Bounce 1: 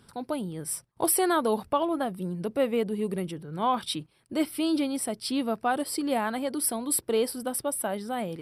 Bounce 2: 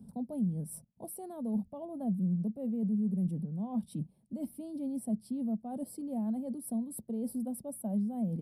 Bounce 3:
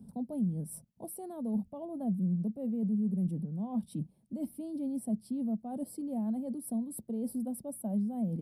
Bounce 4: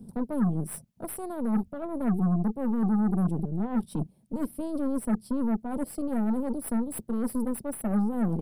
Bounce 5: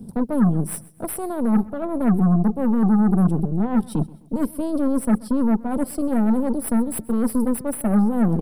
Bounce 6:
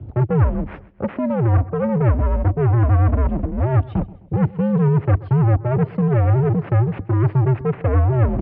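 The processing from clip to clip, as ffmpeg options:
-filter_complex "[0:a]areverse,acompressor=threshold=0.02:ratio=12,areverse,firequalizer=gain_entry='entry(120,0);entry(210,15);entry(320,-8);entry(650,-3);entry(1300,-27);entry(2900,-25);entry(10000,-8)':delay=0.05:min_phase=1,acrossover=split=140[s0][s1];[s1]acompressor=threshold=0.0178:ratio=2.5[s2];[s0][s2]amix=inputs=2:normalize=0,volume=1.19"
-af "equalizer=f=320:t=o:w=0.34:g=3"
-af "aeval=exprs='0.075*(cos(1*acos(clip(val(0)/0.075,-1,1)))-cos(1*PI/2))+0.00841*(cos(8*acos(clip(val(0)/0.075,-1,1)))-cos(8*PI/2))':c=same,volume=1.88"
-af "aecho=1:1:130|260|390:0.0891|0.0348|0.0136,volume=2.51"
-filter_complex "[0:a]asplit=2[s0][s1];[s1]volume=11.2,asoftclip=hard,volume=0.0891,volume=0.708[s2];[s0][s2]amix=inputs=2:normalize=0,highpass=f=210:t=q:w=0.5412,highpass=f=210:t=q:w=1.307,lowpass=f=2800:t=q:w=0.5176,lowpass=f=2800:t=q:w=0.7071,lowpass=f=2800:t=q:w=1.932,afreqshift=-120,volume=1.41"

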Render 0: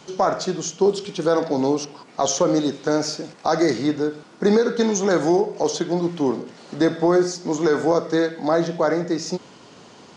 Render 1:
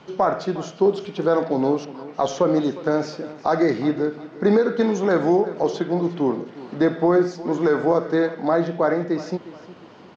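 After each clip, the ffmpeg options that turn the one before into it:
-af "lowpass=2800,aecho=1:1:358|716|1074:0.141|0.048|0.0163"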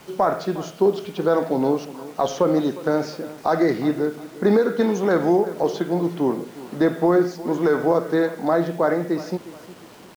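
-af "acrusher=bits=7:mix=0:aa=0.000001"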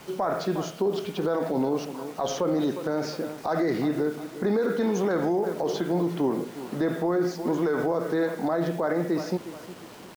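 -af "alimiter=limit=0.133:level=0:latency=1:release=39"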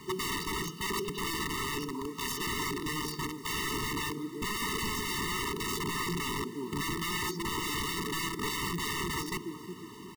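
-af "aeval=exprs='(mod(18.8*val(0)+1,2)-1)/18.8':c=same,afftfilt=real='re*eq(mod(floor(b*sr/1024/440),2),0)':imag='im*eq(mod(floor(b*sr/1024/440),2),0)':win_size=1024:overlap=0.75"

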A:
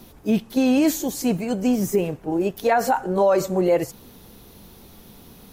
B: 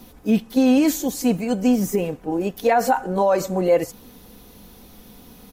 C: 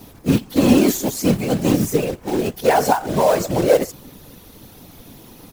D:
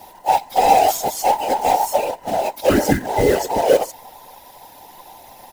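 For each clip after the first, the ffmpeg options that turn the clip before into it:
-af "aecho=1:1:4:0.37"
-af "acrusher=bits=3:mode=log:mix=0:aa=0.000001,acontrast=51,afftfilt=real='hypot(re,im)*cos(2*PI*random(0))':imag='hypot(re,im)*sin(2*PI*random(1))':win_size=512:overlap=0.75,volume=1.41"
-af "afftfilt=real='real(if(between(b,1,1008),(2*floor((b-1)/48)+1)*48-b,b),0)':imag='imag(if(between(b,1,1008),(2*floor((b-1)/48)+1)*48-b,b),0)*if(between(b,1,1008),-1,1)':win_size=2048:overlap=0.75"

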